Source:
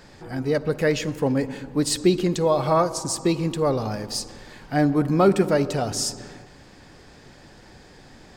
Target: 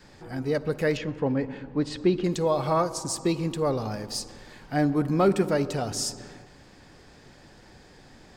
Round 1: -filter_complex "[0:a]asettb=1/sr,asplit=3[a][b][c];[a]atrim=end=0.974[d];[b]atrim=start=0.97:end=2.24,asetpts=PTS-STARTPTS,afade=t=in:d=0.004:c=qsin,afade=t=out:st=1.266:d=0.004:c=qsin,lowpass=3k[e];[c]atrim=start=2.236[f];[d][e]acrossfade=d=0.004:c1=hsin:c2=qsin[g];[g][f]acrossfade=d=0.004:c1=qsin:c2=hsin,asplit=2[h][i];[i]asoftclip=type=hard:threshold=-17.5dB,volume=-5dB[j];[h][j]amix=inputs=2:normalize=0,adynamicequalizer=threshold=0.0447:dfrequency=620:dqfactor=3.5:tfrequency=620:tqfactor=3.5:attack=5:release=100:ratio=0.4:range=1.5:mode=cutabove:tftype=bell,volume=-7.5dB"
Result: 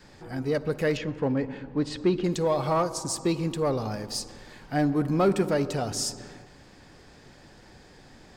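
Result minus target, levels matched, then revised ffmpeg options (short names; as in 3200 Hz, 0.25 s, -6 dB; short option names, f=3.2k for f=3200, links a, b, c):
hard clip: distortion +13 dB
-filter_complex "[0:a]asettb=1/sr,asplit=3[a][b][c];[a]atrim=end=0.974[d];[b]atrim=start=0.97:end=2.24,asetpts=PTS-STARTPTS,afade=t=in:d=0.004:c=qsin,afade=t=out:st=1.266:d=0.004:c=qsin,lowpass=3k[e];[c]atrim=start=2.236[f];[d][e]acrossfade=d=0.004:c1=hsin:c2=qsin[g];[g][f]acrossfade=d=0.004:c1=qsin:c2=hsin,asplit=2[h][i];[i]asoftclip=type=hard:threshold=-11dB,volume=-5dB[j];[h][j]amix=inputs=2:normalize=0,adynamicequalizer=threshold=0.0447:dfrequency=620:dqfactor=3.5:tfrequency=620:tqfactor=3.5:attack=5:release=100:ratio=0.4:range=1.5:mode=cutabove:tftype=bell,volume=-7.5dB"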